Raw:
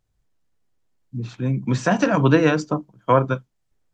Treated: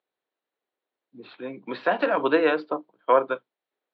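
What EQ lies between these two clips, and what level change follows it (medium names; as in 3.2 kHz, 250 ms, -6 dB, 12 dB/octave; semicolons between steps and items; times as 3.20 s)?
ladder high-pass 320 Hz, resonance 25%; elliptic low-pass 4.1 kHz, stop band 40 dB; +3.5 dB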